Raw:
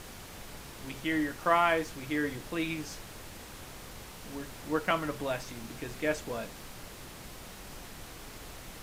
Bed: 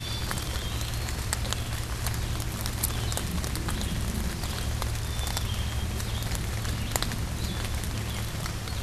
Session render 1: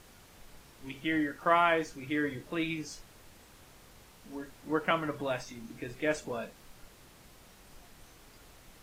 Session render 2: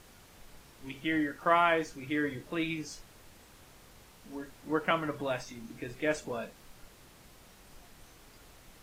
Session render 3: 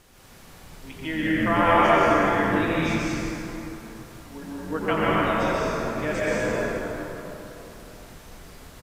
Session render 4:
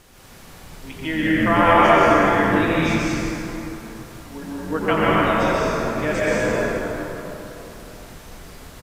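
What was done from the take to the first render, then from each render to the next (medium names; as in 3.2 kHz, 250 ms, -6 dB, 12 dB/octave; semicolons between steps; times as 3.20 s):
noise print and reduce 10 dB
no audible change
frequency-shifting echo 87 ms, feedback 58%, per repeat -97 Hz, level -6 dB; plate-style reverb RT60 3.4 s, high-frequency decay 0.5×, pre-delay 115 ms, DRR -7.5 dB
trim +4.5 dB; peak limiter -3 dBFS, peak gain reduction 1 dB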